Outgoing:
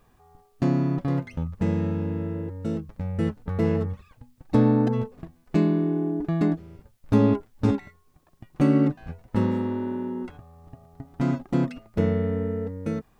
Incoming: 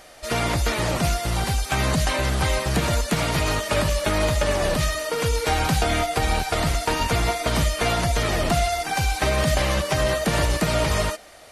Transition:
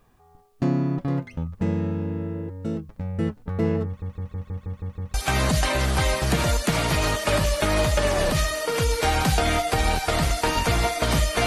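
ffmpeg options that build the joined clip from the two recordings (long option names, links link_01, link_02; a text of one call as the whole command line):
ffmpeg -i cue0.wav -i cue1.wav -filter_complex "[0:a]apad=whole_dur=11.46,atrim=end=11.46,asplit=8[link_01][link_02][link_03][link_04][link_05][link_06][link_07][link_08];[link_01]atrim=end=4.022[link_09];[link_02]atrim=start=3.858:end=4.022[link_10];[link_03]atrim=start=3.858:end=4.022[link_11];[link_04]atrim=start=3.858:end=4.022[link_12];[link_05]atrim=start=3.858:end=4.022[link_13];[link_06]atrim=start=3.858:end=4.022[link_14];[link_07]atrim=start=3.858:end=4.022[link_15];[link_08]atrim=start=3.858:end=4.022[link_16];[1:a]atrim=start=1.578:end=7.9[link_17];[link_09][link_10]acrossfade=duration=0.004:curve1=hsin:curve2=hsin[link_18];[link_18][link_11]acrossfade=duration=0.004:curve1=hsin:curve2=hsin[link_19];[link_19][link_12]acrossfade=duration=0.004:curve1=hsin:curve2=hsin[link_20];[link_20][link_13]acrossfade=duration=0.004:curve1=hsin:curve2=hsin[link_21];[link_21][link_14]acrossfade=duration=0.004:curve1=hsin:curve2=hsin[link_22];[link_22][link_15]acrossfade=duration=0.004:curve1=hsin:curve2=hsin[link_23];[link_23][link_16]acrossfade=duration=0.004:curve1=hsin:curve2=hsin[link_24];[link_24][link_17]acrossfade=duration=0.004:curve1=hsin:curve2=hsin" out.wav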